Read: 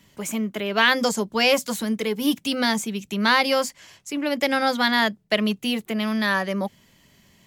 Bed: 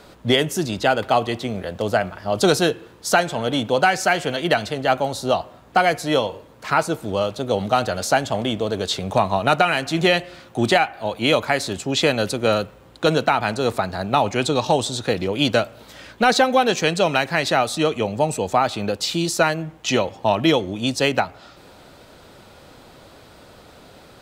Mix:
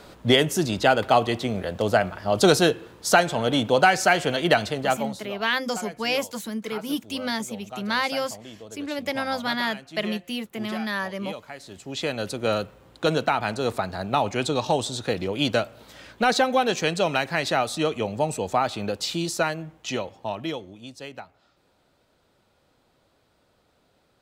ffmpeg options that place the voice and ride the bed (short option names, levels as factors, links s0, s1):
-filter_complex "[0:a]adelay=4650,volume=0.501[s0];[1:a]volume=5.31,afade=t=out:st=4.62:d=0.68:silence=0.112202,afade=t=in:st=11.59:d=1.02:silence=0.177828,afade=t=out:st=19.03:d=1.86:silence=0.177828[s1];[s0][s1]amix=inputs=2:normalize=0"